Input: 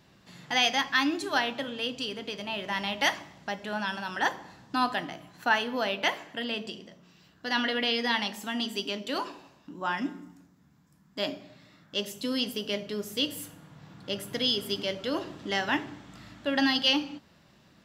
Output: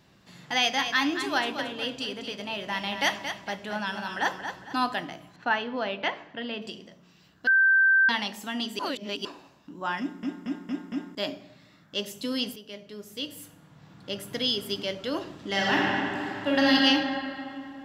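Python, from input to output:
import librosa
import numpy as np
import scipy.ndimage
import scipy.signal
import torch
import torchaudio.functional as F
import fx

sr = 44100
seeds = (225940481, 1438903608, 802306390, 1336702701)

y = fx.echo_feedback(x, sr, ms=226, feedback_pct=36, wet_db=-8.5, at=(0.76, 4.81), fade=0.02)
y = fx.air_absorb(y, sr, metres=190.0, at=(5.36, 6.62))
y = fx.reverb_throw(y, sr, start_s=15.47, length_s=1.27, rt60_s=2.9, drr_db=-4.5)
y = fx.edit(y, sr, fx.bleep(start_s=7.47, length_s=0.62, hz=1560.0, db=-16.5),
    fx.reverse_span(start_s=8.79, length_s=0.46),
    fx.stutter_over(start_s=10.0, slice_s=0.23, count=5),
    fx.fade_in_from(start_s=12.56, length_s=1.8, floor_db=-13.0), tone=tone)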